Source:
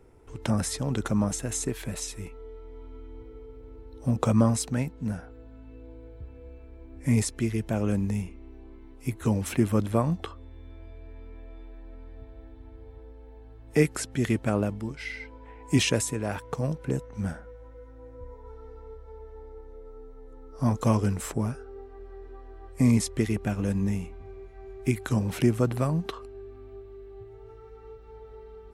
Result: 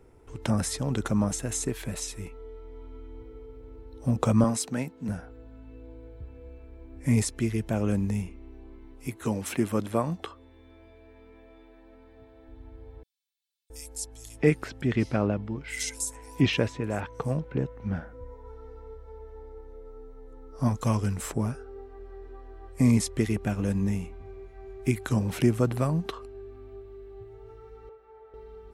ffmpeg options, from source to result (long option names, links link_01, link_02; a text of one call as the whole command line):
ffmpeg -i in.wav -filter_complex "[0:a]asettb=1/sr,asplit=3[link_01][link_02][link_03];[link_01]atrim=end=4.444[link_04];[link_02]atrim=start=4.44:end=5.09,asetpts=PTS-STARTPTS,afade=type=in:duration=0.004:curve=qsin,afade=type=out:start_time=0.646:duration=0.004:curve=qsin,highpass=180[link_05];[link_03]atrim=start=5.086[link_06];[link_04][link_05]acrossfade=duration=0.004:curve1=hsin:curve2=qsin[link_07];[link_07][link_06]acrossfade=duration=0.004:curve1=qsin:curve2=hsin,asettb=1/sr,asplit=3[link_08][link_09][link_10];[link_08]atrim=end=9.074[link_11];[link_09]atrim=start=9.07:end=12.48,asetpts=PTS-STARTPTS,afade=type=in:duration=0.004:curve=qsin,afade=type=out:start_time=3.406:duration=0.004:curve=qsin,highpass=frequency=230:poles=1[link_12];[link_10]atrim=start=12.476[link_13];[link_11][link_12]acrossfade=duration=0.004:curve1=hsin:curve2=qsin[link_14];[link_14][link_13]acrossfade=duration=0.004:curve1=qsin:curve2=hsin,asettb=1/sr,asplit=3[link_15][link_16][link_17];[link_15]atrim=end=13.034[link_18];[link_16]atrim=start=13.03:end=18.13,asetpts=PTS-STARTPTS,afade=type=in:duration=0.004:curve=qsin,afade=type=out:start_time=5.096:duration=0.004:curve=qsin,acrossover=split=4400[link_19][link_20];[link_19]adelay=670[link_21];[link_21][link_20]amix=inputs=2:normalize=0,atrim=end_sample=224910[link_22];[link_17]atrim=start=18.126[link_23];[link_18][link_22]acrossfade=duration=0.004:curve1=hsin:curve2=qsin[link_24];[link_24][link_23]acrossfade=duration=0.004:curve1=qsin:curve2=hsin,asettb=1/sr,asplit=3[link_25][link_26][link_27];[link_25]atrim=end=20.684[link_28];[link_26]atrim=start=20.68:end=21.18,asetpts=PTS-STARTPTS,afade=type=in:duration=0.004:curve=qsin,afade=type=out:start_time=0.496:duration=0.004:curve=qsin,equalizer=frequency=410:width_type=o:width=2.4:gain=-5.5[link_29];[link_27]atrim=start=21.176[link_30];[link_28][link_29]acrossfade=duration=0.004:curve1=hsin:curve2=qsin[link_31];[link_31][link_30]acrossfade=duration=0.004:curve1=qsin:curve2=hsin,asettb=1/sr,asplit=3[link_32][link_33][link_34];[link_32]atrim=end=27.894[link_35];[link_33]atrim=start=27.89:end=28.34,asetpts=PTS-STARTPTS,afade=type=in:duration=0.004:curve=qsin,afade=type=out:start_time=0.446:duration=0.004:curve=qsin,acrossover=split=410 2400:gain=0.126 1 0.224[link_36][link_37][link_38];[link_36][link_37][link_38]amix=inputs=3:normalize=0[link_39];[link_34]atrim=start=28.336[link_40];[link_35][link_39]acrossfade=duration=0.004:curve1=hsin:curve2=qsin[link_41];[link_41][link_40]acrossfade=duration=0.004:curve1=qsin:curve2=hsin" out.wav